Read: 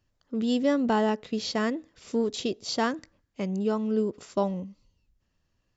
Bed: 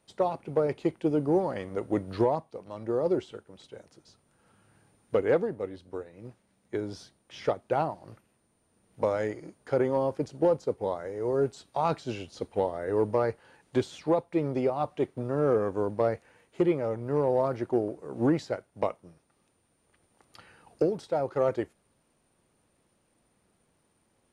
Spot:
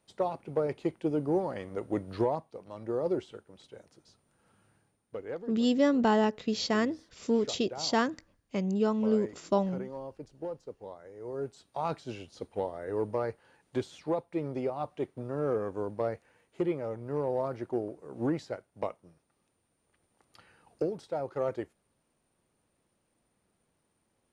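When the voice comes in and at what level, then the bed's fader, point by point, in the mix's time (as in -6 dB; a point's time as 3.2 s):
5.15 s, -0.5 dB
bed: 4.66 s -3.5 dB
5.06 s -14 dB
10.96 s -14 dB
11.82 s -5.5 dB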